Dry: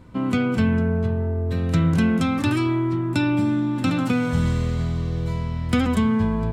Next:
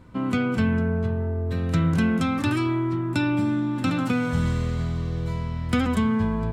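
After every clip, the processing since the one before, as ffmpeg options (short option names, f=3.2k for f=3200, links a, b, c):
-af "equalizer=f=1.4k:w=1.5:g=2.5,volume=-2.5dB"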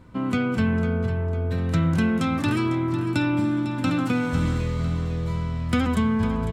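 -af "aecho=1:1:501|1002|1503|2004:0.266|0.114|0.0492|0.0212"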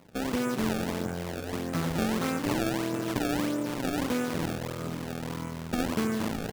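-af "aresample=16000,aeval=exprs='max(val(0),0)':c=same,aresample=44100,highpass=170,lowpass=5.4k,acrusher=samples=25:mix=1:aa=0.000001:lfo=1:lforange=40:lforate=1.6"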